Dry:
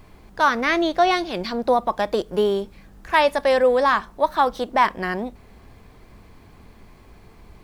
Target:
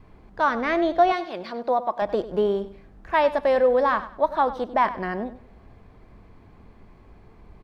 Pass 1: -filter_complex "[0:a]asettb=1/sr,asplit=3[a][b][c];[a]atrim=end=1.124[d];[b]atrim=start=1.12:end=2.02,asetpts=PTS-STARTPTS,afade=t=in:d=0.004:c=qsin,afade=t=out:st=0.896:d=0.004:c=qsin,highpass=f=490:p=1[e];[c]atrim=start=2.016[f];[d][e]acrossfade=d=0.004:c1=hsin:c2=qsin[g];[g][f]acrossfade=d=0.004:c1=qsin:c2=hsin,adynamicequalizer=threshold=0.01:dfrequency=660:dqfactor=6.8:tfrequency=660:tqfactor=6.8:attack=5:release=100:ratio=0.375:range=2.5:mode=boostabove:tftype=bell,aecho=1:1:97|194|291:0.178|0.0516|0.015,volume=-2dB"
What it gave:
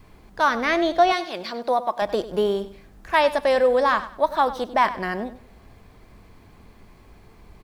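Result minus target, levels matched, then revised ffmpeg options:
2000 Hz band +2.5 dB
-filter_complex "[0:a]asettb=1/sr,asplit=3[a][b][c];[a]atrim=end=1.124[d];[b]atrim=start=1.12:end=2.02,asetpts=PTS-STARTPTS,afade=t=in:d=0.004:c=qsin,afade=t=out:st=0.896:d=0.004:c=qsin,highpass=f=490:p=1[e];[c]atrim=start=2.016[f];[d][e]acrossfade=d=0.004:c1=hsin:c2=qsin[g];[g][f]acrossfade=d=0.004:c1=qsin:c2=hsin,adynamicequalizer=threshold=0.01:dfrequency=660:dqfactor=6.8:tfrequency=660:tqfactor=6.8:attack=5:release=100:ratio=0.375:range=2.5:mode=boostabove:tftype=bell,lowpass=f=1.5k:p=1,aecho=1:1:97|194|291:0.178|0.0516|0.015,volume=-2dB"

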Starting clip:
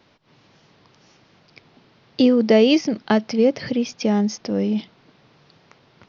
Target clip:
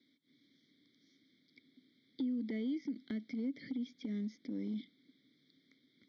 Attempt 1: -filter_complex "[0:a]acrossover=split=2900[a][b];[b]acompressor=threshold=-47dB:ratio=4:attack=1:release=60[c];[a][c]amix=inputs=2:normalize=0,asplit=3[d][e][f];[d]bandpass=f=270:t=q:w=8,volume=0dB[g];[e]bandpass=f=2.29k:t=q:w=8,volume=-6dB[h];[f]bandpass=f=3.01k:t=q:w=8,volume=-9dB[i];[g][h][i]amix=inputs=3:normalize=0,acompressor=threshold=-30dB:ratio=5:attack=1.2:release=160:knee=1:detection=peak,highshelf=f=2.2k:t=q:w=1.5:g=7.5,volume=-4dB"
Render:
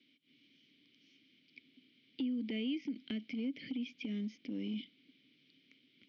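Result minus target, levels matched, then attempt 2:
2000 Hz band +5.0 dB
-filter_complex "[0:a]acrossover=split=2900[a][b];[b]acompressor=threshold=-47dB:ratio=4:attack=1:release=60[c];[a][c]amix=inputs=2:normalize=0,asplit=3[d][e][f];[d]bandpass=f=270:t=q:w=8,volume=0dB[g];[e]bandpass=f=2.29k:t=q:w=8,volume=-6dB[h];[f]bandpass=f=3.01k:t=q:w=8,volume=-9dB[i];[g][h][i]amix=inputs=3:normalize=0,acompressor=threshold=-30dB:ratio=5:attack=1.2:release=160:knee=1:detection=peak,asuperstop=centerf=2700:order=8:qfactor=2.3,highshelf=f=2.2k:t=q:w=1.5:g=7.5,volume=-4dB"

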